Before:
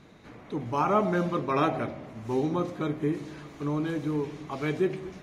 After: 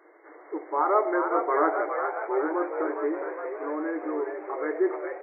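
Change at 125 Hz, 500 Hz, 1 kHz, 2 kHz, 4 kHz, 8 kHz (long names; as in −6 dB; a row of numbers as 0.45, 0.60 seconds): below −40 dB, +3.5 dB, +3.5 dB, +4.0 dB, below −40 dB, can't be measured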